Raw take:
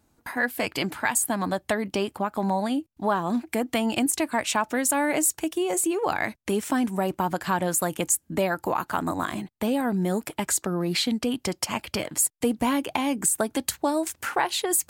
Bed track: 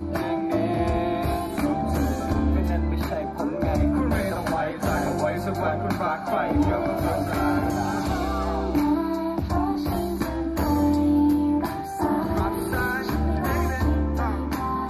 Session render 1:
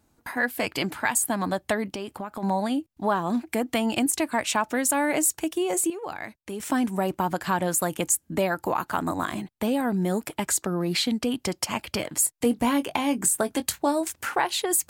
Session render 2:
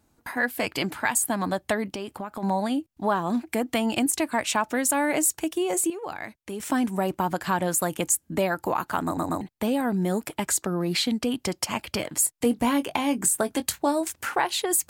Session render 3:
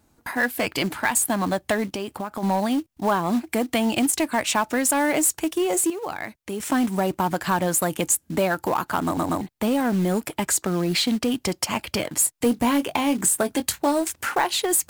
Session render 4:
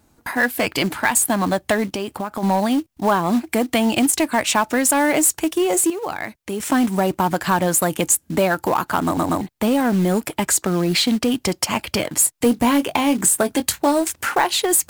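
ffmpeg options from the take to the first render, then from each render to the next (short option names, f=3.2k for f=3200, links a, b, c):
-filter_complex "[0:a]asplit=3[a][b][c];[a]afade=t=out:st=1.85:d=0.02[d];[b]acompressor=threshold=-30dB:ratio=4:attack=3.2:release=140:knee=1:detection=peak,afade=t=in:st=1.85:d=0.02,afade=t=out:st=2.42:d=0.02[e];[c]afade=t=in:st=2.42:d=0.02[f];[d][e][f]amix=inputs=3:normalize=0,asettb=1/sr,asplit=3[g][h][i];[g]atrim=end=12.254[j];[h]atrim=start=12.25:end=14.01,asetpts=PTS-STARTPTS,afade=t=in:d=0.004:c=qsin,afade=t=out:st=1.756:d=0.004:c=qsin,asplit=2[k][l];[l]adelay=21,volume=-11dB[m];[k][m]amix=inputs=2:normalize=0,atrim=end_sample=77616[n];[i]atrim=start=14.006[o];[j][n]acrossfade=d=0.004:c1=hsin:c2=qsin[p];[p][o]acrossfade=d=0.004:c1=qsin:c2=hsin,asplit=3[q][r][s];[q]atrim=end=5.902[t];[r]atrim=start=5.898:end=6.602,asetpts=PTS-STARTPTS,volume=-9dB[u];[s]atrim=start=6.598[v];[t][u]acrossfade=d=0.004:c1=hsin:c2=hsin[w];[w][v]acrossfade=d=0.004:c1=hsin:c2=hsin"
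-filter_complex "[0:a]asplit=4[a][b][c][d];[a]atrim=end=9.172[e];[b]atrim=start=9.048:end=9.172[f];[c]atrim=start=9.048:end=9.172[g];[d]atrim=start=9.408[h];[e][f]acrossfade=d=0.004:c1=hsin:c2=hsin[i];[i][g]acrossfade=d=0.004:c1=hsin:c2=hsin[j];[j][h]acrossfade=d=0.004:c1=hsin:c2=hsin"
-filter_complex "[0:a]asplit=2[a][b];[b]asoftclip=type=hard:threshold=-24.5dB,volume=-5dB[c];[a][c]amix=inputs=2:normalize=0,acrusher=bits=5:mode=log:mix=0:aa=0.000001"
-af "volume=4dB"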